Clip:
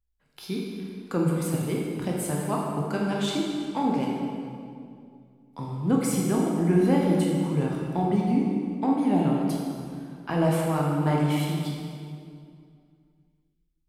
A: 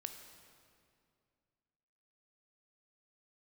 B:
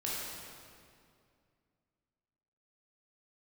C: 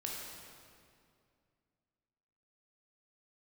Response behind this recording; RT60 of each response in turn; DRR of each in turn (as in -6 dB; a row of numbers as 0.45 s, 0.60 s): C; 2.3 s, 2.3 s, 2.3 s; 6.0 dB, -6.5 dB, -2.5 dB